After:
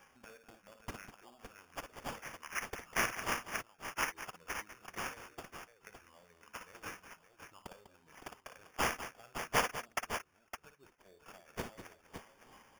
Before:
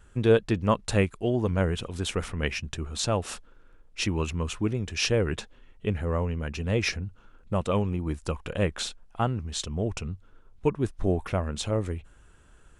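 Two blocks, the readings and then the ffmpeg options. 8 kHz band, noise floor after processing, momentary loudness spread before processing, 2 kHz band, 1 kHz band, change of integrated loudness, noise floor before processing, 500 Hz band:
−8.0 dB, −70 dBFS, 10 LU, −4.5 dB, −5.5 dB, −11.5 dB, −56 dBFS, −19.0 dB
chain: -filter_complex "[0:a]afftfilt=real='re*pow(10,17/40*sin(2*PI*(0.55*log(max(b,1)*sr/1024/100)/log(2)-(-2.7)*(pts-256)/sr)))':imag='im*pow(10,17/40*sin(2*PI*(0.55*log(max(b,1)*sr/1024/100)/log(2)-(-2.7)*(pts-256)/sr)))':win_size=1024:overlap=0.75,acompressor=threshold=-35dB:ratio=5,bandpass=frequency=6700:width_type=q:width=3.6:csg=0,asplit=2[link_01][link_02];[link_02]aecho=0:1:54|58|198|562:0.126|0.376|0.251|0.376[link_03];[link_01][link_03]amix=inputs=2:normalize=0,acrusher=samples=11:mix=1:aa=0.000001,volume=10.5dB"

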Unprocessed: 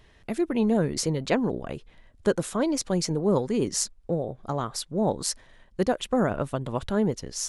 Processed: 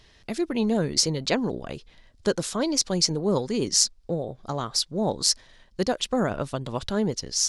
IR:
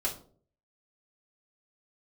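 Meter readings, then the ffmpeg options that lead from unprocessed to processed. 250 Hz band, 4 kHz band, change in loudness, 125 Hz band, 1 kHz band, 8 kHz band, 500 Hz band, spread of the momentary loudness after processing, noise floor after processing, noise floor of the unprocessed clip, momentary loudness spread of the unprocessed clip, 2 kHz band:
−1.0 dB, +9.5 dB, +1.5 dB, −1.0 dB, −0.5 dB, +6.5 dB, −1.0 dB, 10 LU, −57 dBFS, −57 dBFS, 7 LU, +1.0 dB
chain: -af "equalizer=frequency=4900:width=1.1:gain=12,volume=-1dB"

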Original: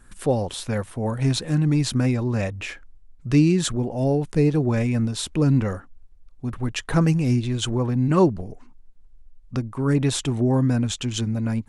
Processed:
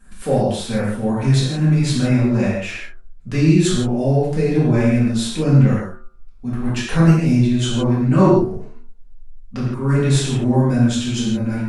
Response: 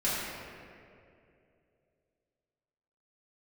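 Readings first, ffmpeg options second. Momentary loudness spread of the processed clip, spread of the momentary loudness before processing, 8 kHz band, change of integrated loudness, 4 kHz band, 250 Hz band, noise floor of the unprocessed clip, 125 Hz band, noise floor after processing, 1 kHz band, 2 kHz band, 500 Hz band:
11 LU, 10 LU, +2.5 dB, +5.0 dB, +3.5 dB, +5.5 dB, −49 dBFS, +5.5 dB, −38 dBFS, +5.0 dB, +5.5 dB, +5.0 dB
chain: -filter_complex "[0:a]bandreject=frequency=74.83:width_type=h:width=4,bandreject=frequency=149.66:width_type=h:width=4,bandreject=frequency=224.49:width_type=h:width=4,bandreject=frequency=299.32:width_type=h:width=4,bandreject=frequency=374.15:width_type=h:width=4,bandreject=frequency=448.98:width_type=h:width=4,bandreject=frequency=523.81:width_type=h:width=4,bandreject=frequency=598.64:width_type=h:width=4,bandreject=frequency=673.47:width_type=h:width=4,bandreject=frequency=748.3:width_type=h:width=4,bandreject=frequency=823.13:width_type=h:width=4,bandreject=frequency=897.96:width_type=h:width=4,bandreject=frequency=972.79:width_type=h:width=4,bandreject=frequency=1047.62:width_type=h:width=4,bandreject=frequency=1122.45:width_type=h:width=4,bandreject=frequency=1197.28:width_type=h:width=4,bandreject=frequency=1272.11:width_type=h:width=4,bandreject=frequency=1346.94:width_type=h:width=4,bandreject=frequency=1421.77:width_type=h:width=4,bandreject=frequency=1496.6:width_type=h:width=4,bandreject=frequency=1571.43:width_type=h:width=4[link_01];[1:a]atrim=start_sample=2205,afade=type=out:start_time=0.23:duration=0.01,atrim=end_sample=10584[link_02];[link_01][link_02]afir=irnorm=-1:irlink=0,volume=-3.5dB"

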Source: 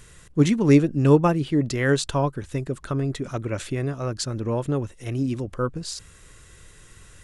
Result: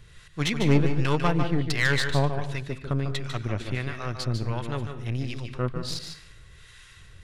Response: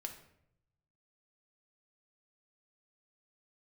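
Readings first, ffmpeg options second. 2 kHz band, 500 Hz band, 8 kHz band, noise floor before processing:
+3.5 dB, −6.5 dB, −5.5 dB, −50 dBFS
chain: -filter_complex "[0:a]equalizer=frequency=125:width_type=o:width=1:gain=3,equalizer=frequency=250:width_type=o:width=1:gain=-7,equalizer=frequency=500:width_type=o:width=1:gain=-4,equalizer=frequency=2000:width_type=o:width=1:gain=4,equalizer=frequency=4000:width_type=o:width=1:gain=8,equalizer=frequency=8000:width_type=o:width=1:gain=-8,acrossover=split=760[link_01][link_02];[link_01]aeval=exprs='val(0)*(1-0.7/2+0.7/2*cos(2*PI*1.4*n/s))':channel_layout=same[link_03];[link_02]aeval=exprs='val(0)*(1-0.7/2-0.7/2*cos(2*PI*1.4*n/s))':channel_layout=same[link_04];[link_03][link_04]amix=inputs=2:normalize=0,aeval=exprs='clip(val(0),-1,0.141)':channel_layout=same,aeval=exprs='0.376*(cos(1*acos(clip(val(0)/0.376,-1,1)))-cos(1*PI/2))+0.0335*(cos(8*acos(clip(val(0)/0.376,-1,1)))-cos(8*PI/2))':channel_layout=same,asplit=2[link_05][link_06];[1:a]atrim=start_sample=2205,afade=type=out:start_time=0.37:duration=0.01,atrim=end_sample=16758,adelay=148[link_07];[link_06][link_07]afir=irnorm=-1:irlink=0,volume=-3.5dB[link_08];[link_05][link_08]amix=inputs=2:normalize=0"

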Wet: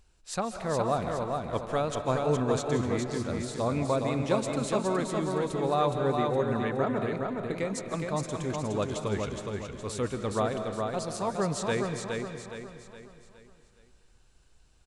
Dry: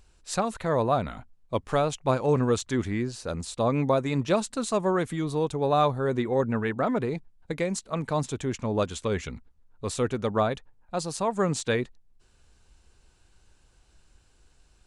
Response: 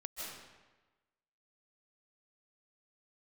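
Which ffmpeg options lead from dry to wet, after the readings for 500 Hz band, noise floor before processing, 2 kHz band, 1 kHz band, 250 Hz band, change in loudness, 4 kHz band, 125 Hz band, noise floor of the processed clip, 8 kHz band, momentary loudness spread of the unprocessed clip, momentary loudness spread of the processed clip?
−2.0 dB, −62 dBFS, −2.0 dB, −2.0 dB, −2.5 dB, −2.5 dB, −2.5 dB, −2.5 dB, −61 dBFS, −2.5 dB, 10 LU, 8 LU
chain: -filter_complex "[0:a]aecho=1:1:416|832|1248|1664|2080:0.631|0.265|0.111|0.0467|0.0196,asplit=2[link_01][link_02];[1:a]atrim=start_sample=2205[link_03];[link_02][link_03]afir=irnorm=-1:irlink=0,volume=-4dB[link_04];[link_01][link_04]amix=inputs=2:normalize=0,volume=-7dB"

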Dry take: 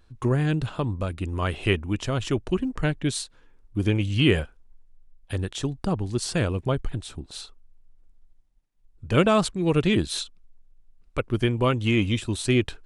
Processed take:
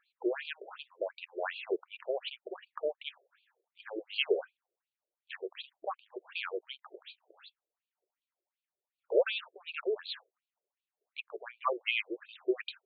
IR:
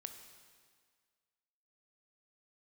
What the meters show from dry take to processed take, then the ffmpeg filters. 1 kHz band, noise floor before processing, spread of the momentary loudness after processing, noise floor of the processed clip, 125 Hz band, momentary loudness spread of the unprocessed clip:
−9.5 dB, −58 dBFS, 16 LU, below −85 dBFS, below −40 dB, 13 LU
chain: -af "afftfilt=real='re*between(b*sr/1024,470*pow(3400/470,0.5+0.5*sin(2*PI*2.7*pts/sr))/1.41,470*pow(3400/470,0.5+0.5*sin(2*PI*2.7*pts/sr))*1.41)':imag='im*between(b*sr/1024,470*pow(3400/470,0.5+0.5*sin(2*PI*2.7*pts/sr))/1.41,470*pow(3400/470,0.5+0.5*sin(2*PI*2.7*pts/sr))*1.41)':win_size=1024:overlap=0.75,volume=-1dB"

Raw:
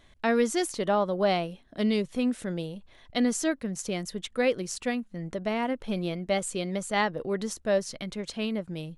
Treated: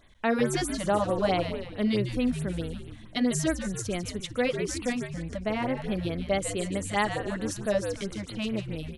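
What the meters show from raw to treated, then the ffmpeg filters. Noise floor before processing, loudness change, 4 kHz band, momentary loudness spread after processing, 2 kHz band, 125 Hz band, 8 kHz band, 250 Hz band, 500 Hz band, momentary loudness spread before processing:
−57 dBFS, 0.0 dB, −0.5 dB, 7 LU, 0.0 dB, +4.0 dB, 0.0 dB, 0.0 dB, −1.0 dB, 9 LU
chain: -filter_complex "[0:a]asplit=7[link_01][link_02][link_03][link_04][link_05][link_06][link_07];[link_02]adelay=148,afreqshift=-93,volume=-8dB[link_08];[link_03]adelay=296,afreqshift=-186,volume=-13.4dB[link_09];[link_04]adelay=444,afreqshift=-279,volume=-18.7dB[link_10];[link_05]adelay=592,afreqshift=-372,volume=-24.1dB[link_11];[link_06]adelay=740,afreqshift=-465,volume=-29.4dB[link_12];[link_07]adelay=888,afreqshift=-558,volume=-34.8dB[link_13];[link_01][link_08][link_09][link_10][link_11][link_12][link_13]amix=inputs=7:normalize=0,afftfilt=real='re*(1-between(b*sr/1024,330*pow(6800/330,0.5+0.5*sin(2*PI*4.6*pts/sr))/1.41,330*pow(6800/330,0.5+0.5*sin(2*PI*4.6*pts/sr))*1.41))':imag='im*(1-between(b*sr/1024,330*pow(6800/330,0.5+0.5*sin(2*PI*4.6*pts/sr))/1.41,330*pow(6800/330,0.5+0.5*sin(2*PI*4.6*pts/sr))*1.41))':win_size=1024:overlap=0.75"

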